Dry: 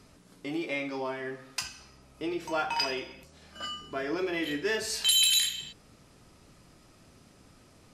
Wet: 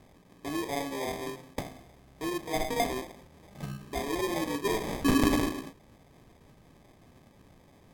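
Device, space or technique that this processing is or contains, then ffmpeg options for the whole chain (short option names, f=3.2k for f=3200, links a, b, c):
crushed at another speed: -af "asetrate=55125,aresample=44100,acrusher=samples=25:mix=1:aa=0.000001,asetrate=35280,aresample=44100"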